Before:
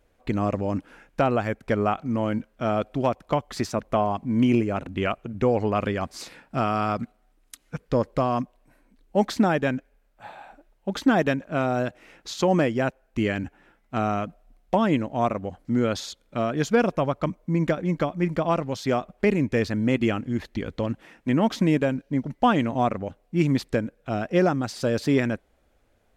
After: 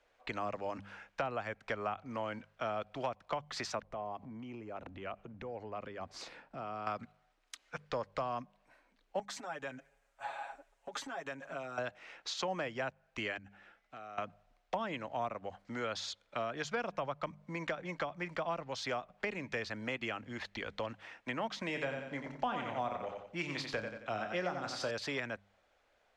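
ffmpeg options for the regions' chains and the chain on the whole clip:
-filter_complex "[0:a]asettb=1/sr,asplit=3[a][b][c];[a]atrim=end=3.824[d];[b]atrim=start=3.82:end=6.87,asetpts=PTS-STARTPTS,afade=t=in:d=0.004:c=qsin,afade=t=out:st=3.046:d=0.004:c=qsin,tiltshelf=f=640:g=7,acompressor=threshold=-31dB:ratio=4:attack=3.2:release=140:knee=1:detection=peak[e];[c]atrim=start=6.866[f];[d][e]acrossfade=d=0.004:c1=hsin:c2=qsin[g];[g][f]acrossfade=d=0.004:c1=qsin:c2=hsin,asettb=1/sr,asplit=3[h][i][j];[h]atrim=end=9.194[k];[i]atrim=start=9.19:end=11.78,asetpts=PTS-STARTPTS,afade=t=in:d=0.004:c=qsin,afade=t=out:st=2.586:d=0.004:c=qsin,highshelf=f=5.9k:t=q:w=1.5:g=7.5,acompressor=threshold=-33dB:ratio=16:attack=3.2:release=140:knee=1:detection=peak,aecho=1:1:7.3:0.86,atrim=end_sample=114219[l];[j]atrim=start=11.776[m];[k][l]acrossfade=d=0.004:c1=hsin:c2=qsin[n];[n][m]acrossfade=d=0.004:c1=qsin:c2=hsin,asettb=1/sr,asplit=3[o][p][q];[o]atrim=end=13.374[r];[p]atrim=start=13.37:end=14.18,asetpts=PTS-STARTPTS,afade=t=in:d=0.004:c=qsin,afade=t=out:st=0.806:d=0.004:c=qsin,equalizer=f=970:w=7.2:g=-11,acompressor=threshold=-39dB:ratio=12:attack=3.2:release=140:knee=1:detection=peak[s];[q]atrim=start=14.176[t];[r][s]acrossfade=d=0.004:c1=hsin:c2=qsin[u];[u][t]acrossfade=d=0.004:c1=qsin:c2=hsin,asettb=1/sr,asplit=3[v][w][x];[v]atrim=end=21.664[y];[w]atrim=start=21.66:end=24.91,asetpts=PTS-STARTPTS,afade=t=in:d=0.004:c=qsin,afade=t=out:st=3.246:d=0.004:c=qsin,asplit=2[z][aa];[aa]adelay=28,volume=-9.5dB[ab];[z][ab]amix=inputs=2:normalize=0,atrim=end_sample=143325,aecho=1:1:89|178|267|356:0.447|0.156|0.0547|0.0192,atrim=end_sample=143325[ac];[x]atrim=start=24.906[ad];[y][ac]acrossfade=d=0.004:c1=hsin:c2=qsin[ae];[ae][ad]acrossfade=d=0.004:c1=qsin:c2=hsin,acrossover=split=540 6800:gain=0.141 1 0.0891[af][ag][ah];[af][ag][ah]amix=inputs=3:normalize=0,bandreject=f=49.94:t=h:w=4,bandreject=f=99.88:t=h:w=4,bandreject=f=149.82:t=h:w=4,bandreject=f=199.76:t=h:w=4,acrossover=split=210|480[ai][aj][ak];[ai]acompressor=threshold=-46dB:ratio=4[al];[aj]acompressor=threshold=-48dB:ratio=4[am];[ak]acompressor=threshold=-37dB:ratio=4[an];[al][am][an]amix=inputs=3:normalize=0"

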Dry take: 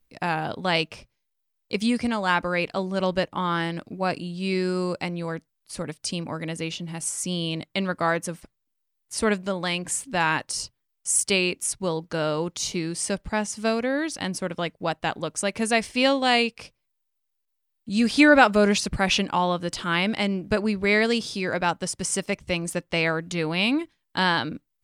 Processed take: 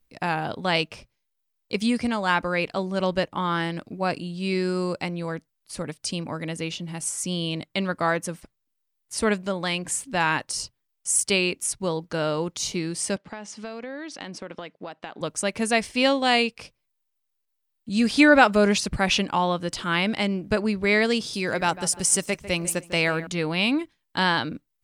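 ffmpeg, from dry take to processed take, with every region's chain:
-filter_complex "[0:a]asettb=1/sr,asplit=3[a][b][c];[a]atrim=end=13.164[d];[b]atrim=start=13.16:end=15.21,asetpts=PTS-STARTPTS,afade=t=in:d=0.004:c=qsin,afade=t=out:st=2.046:d=0.004:c=qsin,highpass=220,lowpass=4.8k,acompressor=threshold=-31dB:ratio=12:attack=3.2:release=140:knee=1:detection=peak[e];[c]atrim=start=15.206[f];[d][e]acrossfade=d=0.004:c1=hsin:c2=qsin[g];[g][f]acrossfade=d=0.004:c1=qsin:c2=hsin,asettb=1/sr,asplit=3[h][i][j];[h]atrim=end=21.334[k];[i]atrim=start=21.33:end=23.27,asetpts=PTS-STARTPTS,afade=t=in:d=0.004:c=qsin,afade=t=out:st=1.936:d=0.004:c=qsin,highshelf=f=7.1k:g=12,asplit=2[l][m];[m]adelay=149,lowpass=f=2k:p=1,volume=-13.5dB,asplit=2[n][o];[o]adelay=149,lowpass=f=2k:p=1,volume=0.35,asplit=2[p][q];[q]adelay=149,lowpass=f=2k:p=1,volume=0.35[r];[l][n][p][r]amix=inputs=4:normalize=0,atrim=end_sample=85554[s];[j]atrim=start=23.266[t];[k][s]acrossfade=d=0.004:c1=hsin:c2=qsin[u];[u][t]acrossfade=d=0.004:c1=qsin:c2=hsin"

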